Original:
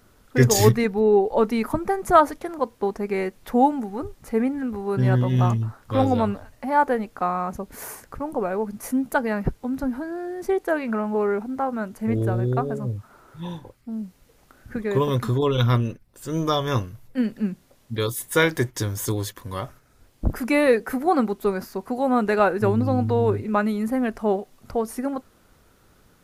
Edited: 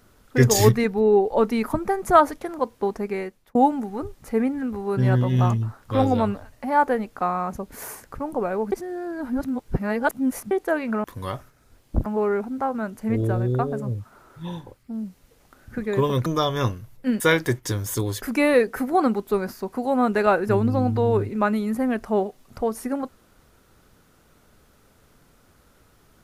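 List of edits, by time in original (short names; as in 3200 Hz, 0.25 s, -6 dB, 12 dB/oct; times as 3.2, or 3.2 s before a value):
3–3.55 fade out
8.72–10.51 reverse
15.24–16.37 cut
17.31–18.31 cut
19.33–20.35 move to 11.04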